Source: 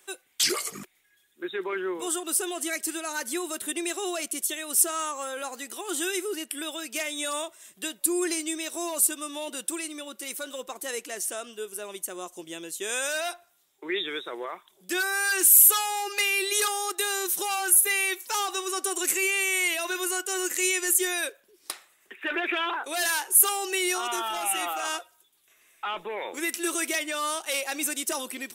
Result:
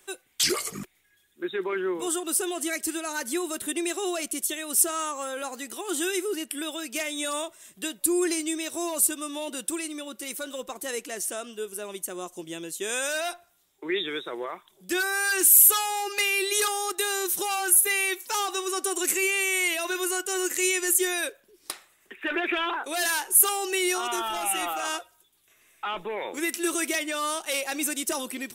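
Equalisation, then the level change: bass shelf 200 Hz +11.5 dB; 0.0 dB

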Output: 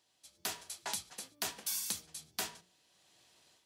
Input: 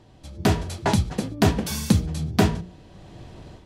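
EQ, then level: differentiator; dynamic bell 960 Hz, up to +4 dB, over -55 dBFS, Q 0.77; -4.0 dB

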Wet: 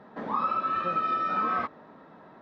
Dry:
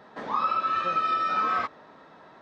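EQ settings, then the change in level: low-pass 1.6 kHz 6 dB/octave; peaking EQ 210 Hz +5.5 dB 1.1 oct; 0.0 dB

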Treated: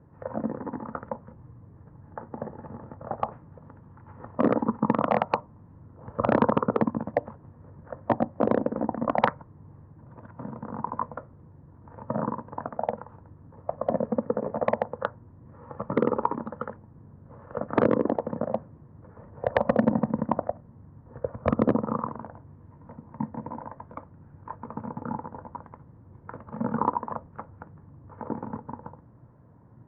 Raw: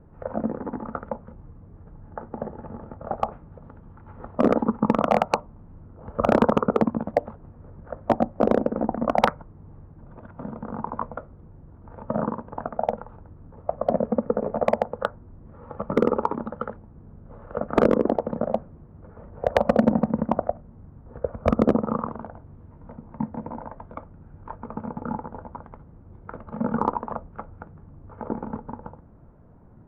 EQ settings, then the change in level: cabinet simulation 100–4100 Hz, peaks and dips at 120 Hz +8 dB, 290 Hz +4 dB, 520 Hz +3 dB, 1 kHz +8 dB, 1.8 kHz +8 dB; bass shelf 130 Hz +7.5 dB; -6.5 dB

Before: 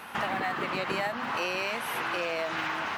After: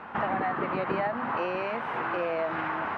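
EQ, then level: low-pass 1.4 kHz 12 dB/octave; +3.5 dB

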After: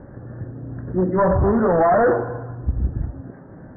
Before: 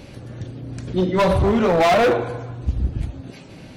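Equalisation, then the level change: steep low-pass 1.8 kHz 96 dB/octave; 0.0 dB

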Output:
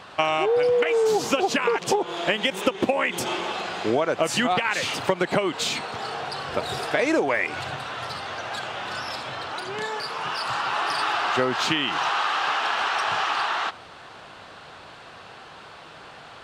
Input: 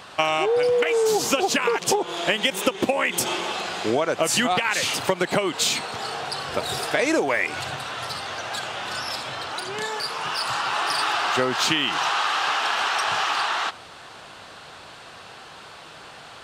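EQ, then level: treble shelf 5.5 kHz -11.5 dB; 0.0 dB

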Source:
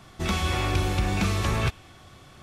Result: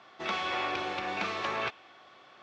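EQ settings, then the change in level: band-pass 510–7200 Hz; distance through air 180 m; 0.0 dB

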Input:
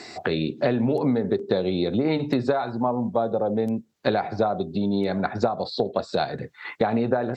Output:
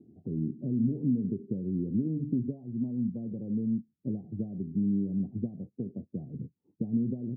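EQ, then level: high-pass 130 Hz 6 dB/octave; inverse Chebyshev low-pass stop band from 1.5 kHz, stop band 80 dB; 0.0 dB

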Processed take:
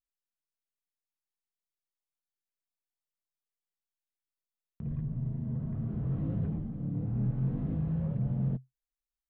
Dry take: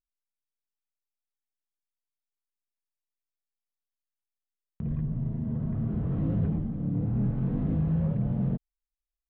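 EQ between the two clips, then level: dynamic bell 130 Hz, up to +7 dB, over -45 dBFS, Q 7.8; -6.0 dB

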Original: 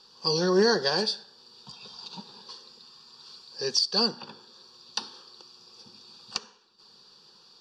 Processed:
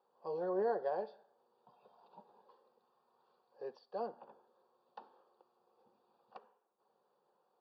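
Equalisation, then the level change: band-pass filter 650 Hz, Q 4.1; distance through air 370 m; 0.0 dB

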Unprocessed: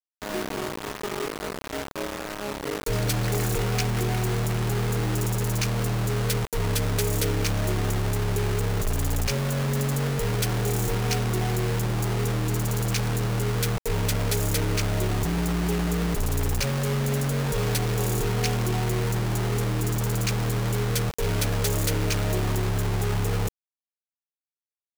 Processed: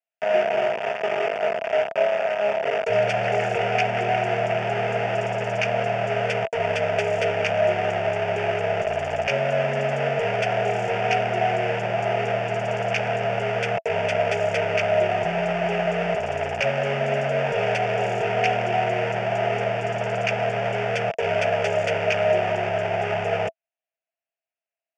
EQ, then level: cabinet simulation 230–4700 Hz, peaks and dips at 270 Hz +4 dB, 680 Hz +3 dB, 1.1 kHz +8 dB, 2.7 kHz +8 dB; peaking EQ 660 Hz +14.5 dB 0.21 oct; static phaser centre 1.1 kHz, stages 6; +6.0 dB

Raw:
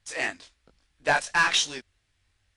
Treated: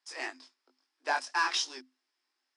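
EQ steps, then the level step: rippled Chebyshev high-pass 250 Hz, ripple 9 dB; peaking EQ 5.1 kHz +14 dB 0.28 oct; -3.0 dB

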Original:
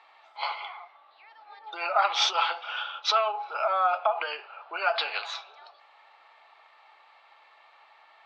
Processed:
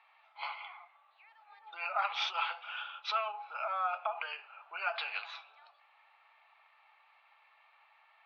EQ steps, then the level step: high-pass 820 Hz 12 dB/octave; distance through air 210 m; peaking EQ 2.5 kHz +6 dB 0.35 oct; -6.5 dB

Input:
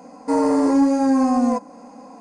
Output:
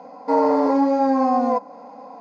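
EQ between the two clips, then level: cabinet simulation 170–3600 Hz, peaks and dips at 230 Hz -5 dB, 340 Hz -10 dB, 1.2 kHz -6 dB, 1.7 kHz -8 dB; bass shelf 400 Hz -10.5 dB; peaking EQ 2.7 kHz -11 dB 0.74 oct; +8.5 dB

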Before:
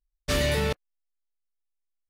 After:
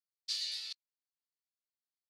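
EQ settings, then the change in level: ladder band-pass 4.8 kHz, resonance 70%; +2.0 dB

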